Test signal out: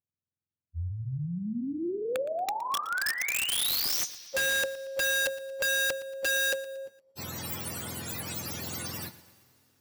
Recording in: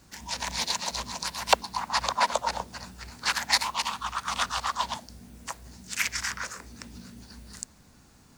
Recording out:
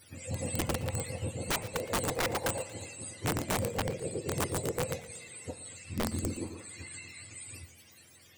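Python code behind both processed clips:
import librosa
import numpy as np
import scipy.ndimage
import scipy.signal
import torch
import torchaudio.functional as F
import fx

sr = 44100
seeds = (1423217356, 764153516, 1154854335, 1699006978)

p1 = fx.octave_mirror(x, sr, pivot_hz=700.0)
p2 = fx.tilt_eq(p1, sr, slope=3.0)
p3 = fx.rev_double_slope(p2, sr, seeds[0], early_s=0.23, late_s=3.3, knee_db=-21, drr_db=9.0)
p4 = (np.mod(10.0 ** (24.0 / 20.0) * p3 + 1.0, 2.0) - 1.0) / 10.0 ** (24.0 / 20.0)
y = p4 + fx.echo_feedback(p4, sr, ms=116, feedback_pct=46, wet_db=-17.5, dry=0)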